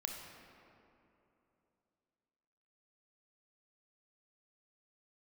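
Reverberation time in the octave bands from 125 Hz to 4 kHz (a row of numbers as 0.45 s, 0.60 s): 3.2 s, 3.3 s, 3.2 s, 2.8 s, 2.2 s, 1.5 s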